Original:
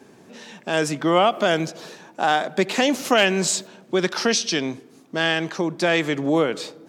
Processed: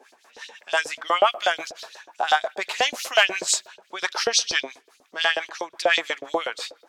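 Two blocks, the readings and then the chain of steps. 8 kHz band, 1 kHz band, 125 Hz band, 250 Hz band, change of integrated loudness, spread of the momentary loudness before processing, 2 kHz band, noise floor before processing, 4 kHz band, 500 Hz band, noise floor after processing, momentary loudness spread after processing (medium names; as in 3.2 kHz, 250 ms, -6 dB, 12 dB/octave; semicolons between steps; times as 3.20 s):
0.0 dB, -1.0 dB, under -25 dB, -19.0 dB, -1.5 dB, 13 LU, +0.5 dB, -51 dBFS, +1.0 dB, -5.5 dB, -62 dBFS, 18 LU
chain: LFO high-pass saw up 8.2 Hz 490–5000 Hz; harmonic tremolo 5.8 Hz, depth 70%, crossover 740 Hz; trim +1 dB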